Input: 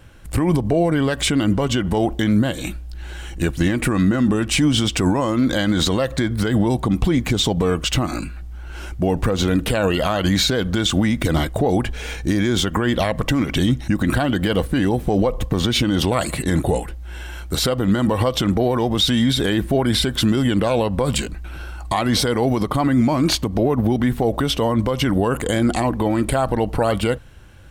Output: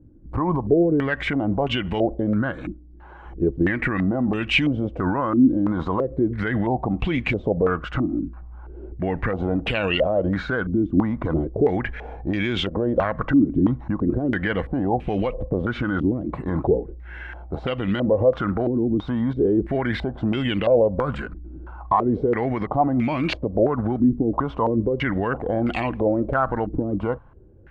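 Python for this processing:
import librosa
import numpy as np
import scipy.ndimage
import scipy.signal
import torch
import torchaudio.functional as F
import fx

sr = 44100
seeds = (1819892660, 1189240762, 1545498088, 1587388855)

y = fx.low_shelf(x, sr, hz=170.0, db=-9.5, at=(2.72, 3.26))
y = fx.filter_held_lowpass(y, sr, hz=3.0, low_hz=300.0, high_hz=2600.0)
y = y * librosa.db_to_amplitude(-6.0)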